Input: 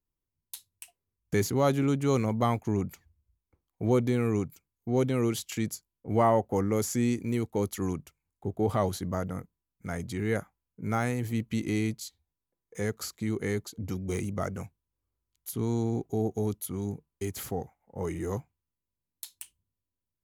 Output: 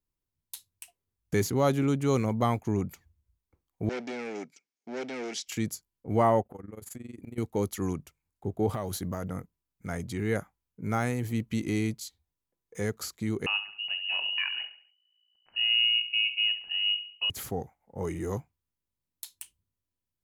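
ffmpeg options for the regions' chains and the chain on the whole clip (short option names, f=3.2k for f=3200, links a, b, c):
-filter_complex "[0:a]asettb=1/sr,asplit=3[a][b][c];[a]atrim=end=3.894[d];[b]atrim=start=3.89:end=5.48,asetpts=PTS-STARTPTS,afade=t=in:d=0.004:c=qsin,afade=t=out:st=1.586:d=0.004:c=qsin,asoftclip=type=hard:threshold=-28.5dB,highpass=f=260:w=0.5412,highpass=f=260:w=1.3066,equalizer=f=330:t=q:w=4:g=-7,equalizer=f=550:t=q:w=4:g=-4,equalizer=f=1.1k:t=q:w=4:g=-10,equalizer=f=2.2k:t=q:w=4:g=6,equalizer=f=5.4k:t=q:w=4:g=8,lowpass=f=7.3k:w=0.5412,lowpass=f=7.3k:w=1.3066[e];[c]atrim=start=5.476[f];[d][e]acrossfade=d=0.004:c1=hsin:c2=qsin[g];[g][f]acrossfade=d=0.004:c1=qsin:c2=hsin,asettb=1/sr,asplit=3[h][i][j];[h]atrim=end=6.424[k];[i]atrim=start=6.42:end=7.38,asetpts=PTS-STARTPTS,afade=t=in:d=0.004:c=qsin,afade=t=out:st=0.956:d=0.004:c=qsin,equalizer=f=5.7k:t=o:w=0.51:g=-14.5,acompressor=threshold=-35dB:ratio=10:attack=3.2:release=140:knee=1:detection=peak,tremolo=f=22:d=0.889[l];[j]atrim=start=7.376[m];[k][l]acrossfade=d=0.004:c1=hsin:c2=qsin[n];[n][m]acrossfade=d=0.004:c1=qsin:c2=hsin,asettb=1/sr,asplit=3[o][p][q];[o]atrim=end=8.734[r];[p]atrim=start=8.73:end=9.24,asetpts=PTS-STARTPTS,afade=t=in:d=0.004:c=qsin,afade=t=out:st=0.506:d=0.004:c=qsin,highshelf=f=12k:g=11,acompressor=threshold=-27dB:ratio=10:attack=3.2:release=140:knee=1:detection=peak[s];[q]atrim=start=9.236[t];[r][s]acrossfade=d=0.004:c1=hsin:c2=qsin[u];[u][t]acrossfade=d=0.004:c1=qsin:c2=hsin,asettb=1/sr,asplit=3[v][w][x];[v]atrim=end=13.464[y];[w]atrim=start=13.46:end=17.3,asetpts=PTS-STARTPTS,afade=t=in:d=0.004:c=qsin,afade=t=out:st=3.836:d=0.004:c=qsin,asubboost=boost=6.5:cutoff=100,aecho=1:1:69|138|207|276:0.266|0.112|0.0469|0.0197,atrim=end_sample=169344,lowpass=f=2.6k:t=q:w=0.5098,lowpass=f=2.6k:t=q:w=0.6013,lowpass=f=2.6k:t=q:w=0.9,lowpass=f=2.6k:t=q:w=2.563,afreqshift=-3000[z];[x]atrim=start=17.296[aa];[y][z]acrossfade=d=0.004:c1=hsin:c2=qsin[ab];[ab][aa]acrossfade=d=0.004:c1=qsin:c2=hsin"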